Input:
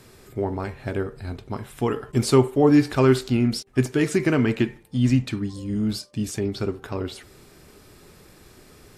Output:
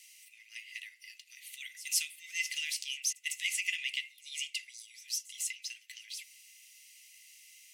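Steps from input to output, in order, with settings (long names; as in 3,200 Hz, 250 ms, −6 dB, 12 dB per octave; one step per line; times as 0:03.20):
Chebyshev high-pass with heavy ripple 1,700 Hz, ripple 6 dB
speed change +16%
echo ahead of the sound 153 ms −19 dB
level +2 dB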